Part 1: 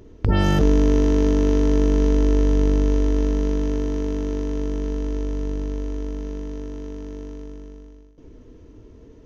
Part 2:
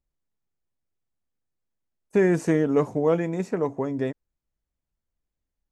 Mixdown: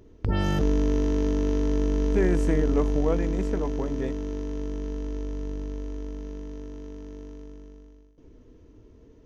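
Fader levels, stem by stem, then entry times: -6.5, -5.0 dB; 0.00, 0.00 s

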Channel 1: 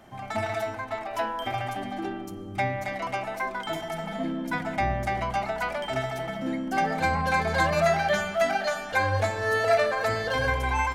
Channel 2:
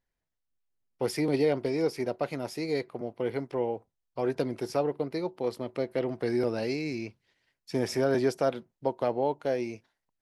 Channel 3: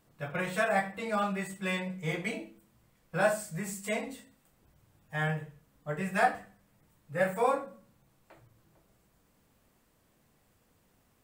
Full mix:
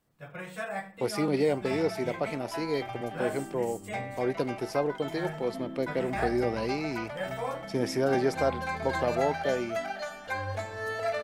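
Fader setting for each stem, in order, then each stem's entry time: -9.0, -0.5, -7.5 dB; 1.35, 0.00, 0.00 s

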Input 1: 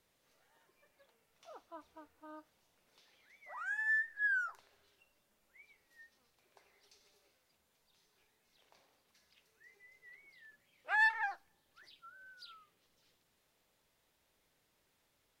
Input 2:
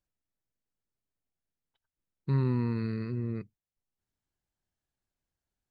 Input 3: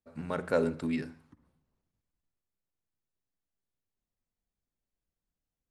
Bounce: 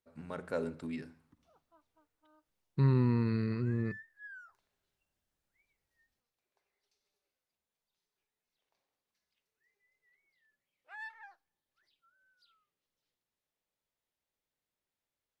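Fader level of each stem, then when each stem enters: -16.0, +0.5, -8.0 dB; 0.00, 0.50, 0.00 s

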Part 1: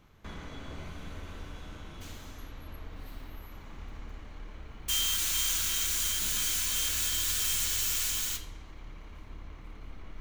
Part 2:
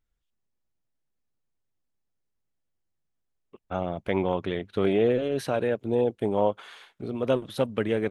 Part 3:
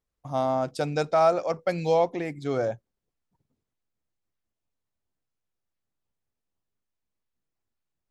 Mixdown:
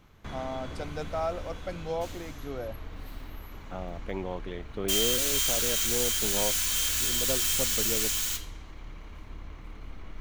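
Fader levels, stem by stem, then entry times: +2.5, -9.0, -10.5 dB; 0.00, 0.00, 0.00 s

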